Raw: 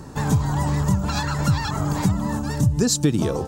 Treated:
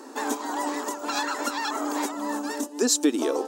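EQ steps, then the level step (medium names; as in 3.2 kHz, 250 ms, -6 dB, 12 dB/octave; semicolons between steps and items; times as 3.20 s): dynamic bell 4.6 kHz, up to -4 dB, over -48 dBFS, Q 6.9; brick-wall FIR high-pass 240 Hz; 0.0 dB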